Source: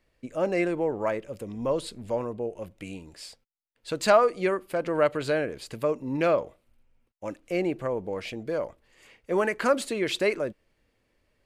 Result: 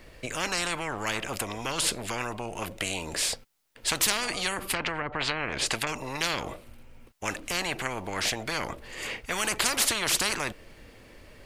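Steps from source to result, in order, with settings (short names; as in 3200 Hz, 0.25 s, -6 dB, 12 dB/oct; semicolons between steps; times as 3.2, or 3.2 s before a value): 4.66–5.87 treble ducked by the level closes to 530 Hz, closed at -18.5 dBFS; spectral compressor 10:1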